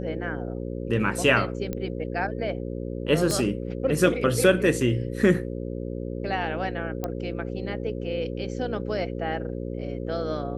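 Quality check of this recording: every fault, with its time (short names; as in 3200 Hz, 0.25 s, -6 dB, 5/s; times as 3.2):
buzz 60 Hz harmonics 9 -32 dBFS
1.73 pop -17 dBFS
3.31 pop -13 dBFS
7.04 pop -15 dBFS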